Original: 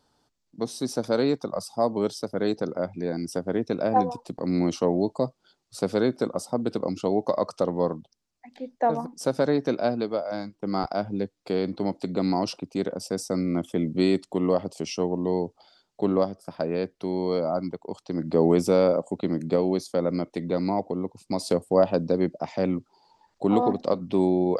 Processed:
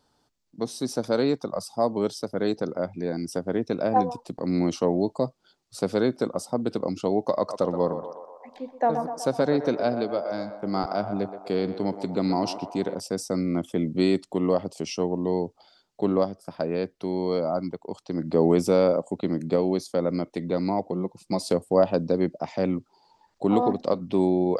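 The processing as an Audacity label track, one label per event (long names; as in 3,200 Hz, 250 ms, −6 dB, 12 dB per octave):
7.370000	13.000000	feedback echo with a band-pass in the loop 124 ms, feedback 70%, band-pass 850 Hz, level −8 dB
20.920000	21.390000	comb filter 5.8 ms, depth 53%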